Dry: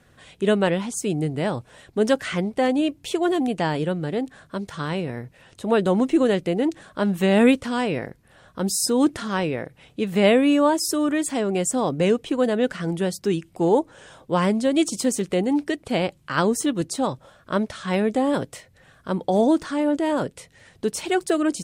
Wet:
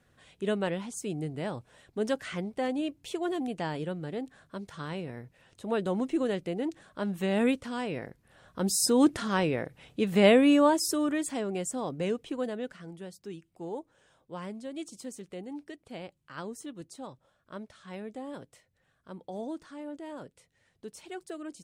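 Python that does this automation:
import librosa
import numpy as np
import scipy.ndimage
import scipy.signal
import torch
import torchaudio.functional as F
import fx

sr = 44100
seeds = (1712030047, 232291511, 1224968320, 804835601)

y = fx.gain(x, sr, db=fx.line((7.84, -10.0), (8.86, -3.0), (10.55, -3.0), (11.75, -11.0), (12.38, -11.0), (12.91, -19.0)))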